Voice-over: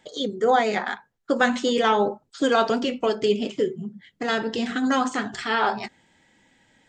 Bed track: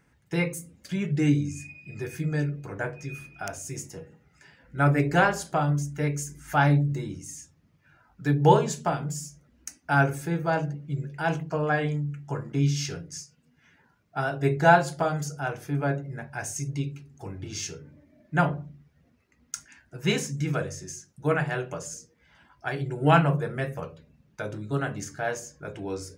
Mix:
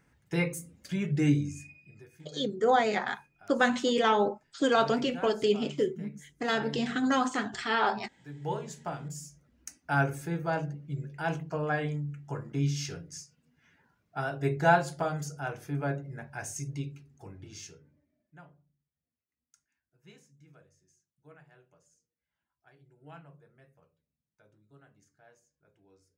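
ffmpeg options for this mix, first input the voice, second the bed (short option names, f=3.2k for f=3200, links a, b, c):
-filter_complex "[0:a]adelay=2200,volume=-4.5dB[a];[1:a]volume=13.5dB,afade=t=out:st=1.33:d=0.73:silence=0.11885,afade=t=in:st=8.33:d=1.17:silence=0.158489,afade=t=out:st=16.59:d=1.81:silence=0.0530884[b];[a][b]amix=inputs=2:normalize=0"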